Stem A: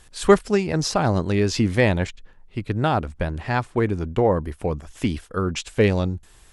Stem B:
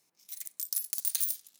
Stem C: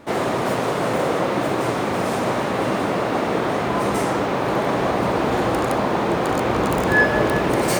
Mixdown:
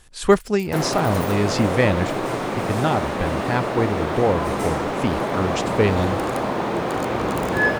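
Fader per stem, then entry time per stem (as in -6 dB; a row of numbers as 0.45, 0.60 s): -0.5, -11.0, -3.0 dB; 0.00, 0.00, 0.65 s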